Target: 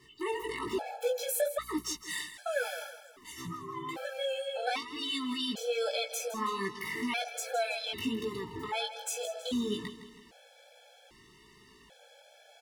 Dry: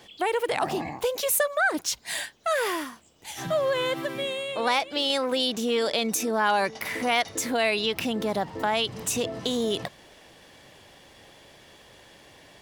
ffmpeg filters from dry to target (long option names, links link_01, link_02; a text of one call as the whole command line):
ffmpeg -i in.wav -filter_complex "[0:a]asettb=1/sr,asplit=3[link_01][link_02][link_03];[link_01]atrim=end=3.454[link_04];[link_02]atrim=start=3.45:end=3.89,asetpts=PTS-STARTPTS,afade=type=in:duration=0.004:curve=qsin,afade=type=out:start_time=0.436:duration=0.004:curve=qsin,lowpass=1100[link_05];[link_03]atrim=start=3.886[link_06];[link_04][link_05]acrossfade=duration=0.004:curve1=hsin:curve2=qsin[link_07];[link_07][link_06]acrossfade=duration=0.004:curve1=qsin:curve2=hsin,asplit=2[link_08][link_09];[link_09]alimiter=limit=-19.5dB:level=0:latency=1,volume=-3dB[link_10];[link_08][link_10]amix=inputs=2:normalize=0,flanger=delay=2.3:depth=3.4:regen=-44:speed=0.23:shape=sinusoidal,asettb=1/sr,asplit=3[link_11][link_12][link_13];[link_11]atrim=end=0.414[link_14];[link_12]atrim=start=0.41:end=1.93,asetpts=PTS-STARTPTS,afade=type=in:duration=0.004:curve=qsin,afade=type=out:start_time=1.516:duration=0.004:curve=qsin,aeval=exprs='val(0)+0.00251*(sin(2*PI*60*n/s)+sin(2*PI*2*60*n/s)/2+sin(2*PI*3*60*n/s)/3+sin(2*PI*4*60*n/s)/4+sin(2*PI*5*60*n/s)/5)':channel_layout=same[link_15];[link_13]atrim=start=1.926[link_16];[link_14][link_15]acrossfade=duration=0.004:curve1=hsin:curve2=qsin[link_17];[link_17][link_16]acrossfade=duration=0.004:curve1=qsin:curve2=hsin,flanger=delay=15.5:depth=5.2:speed=1.2,asplit=2[link_18][link_19];[link_19]aecho=0:1:162|324|486|648:0.237|0.107|0.048|0.0216[link_20];[link_18][link_20]amix=inputs=2:normalize=0,afftfilt=real='re*gt(sin(2*PI*0.63*pts/sr)*(1-2*mod(floor(b*sr/1024/440),2)),0)':imag='im*gt(sin(2*PI*0.63*pts/sr)*(1-2*mod(floor(b*sr/1024/440),2)),0)':win_size=1024:overlap=0.75,volume=-1.5dB" out.wav